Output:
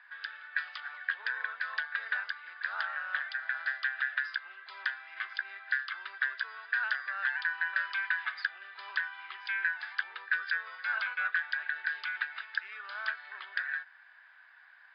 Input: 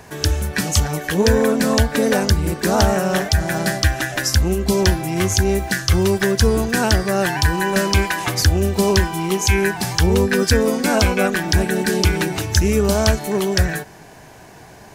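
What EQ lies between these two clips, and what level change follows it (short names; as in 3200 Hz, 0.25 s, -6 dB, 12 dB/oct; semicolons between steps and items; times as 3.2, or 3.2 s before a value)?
ladder high-pass 1400 Hz, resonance 55%; rippled Chebyshev low-pass 5000 Hz, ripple 6 dB; air absorption 280 m; 0.0 dB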